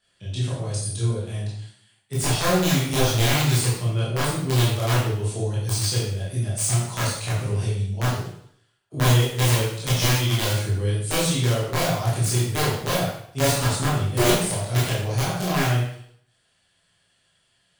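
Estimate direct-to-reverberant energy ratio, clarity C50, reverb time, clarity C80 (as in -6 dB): -8.5 dB, 1.5 dB, 0.65 s, 5.0 dB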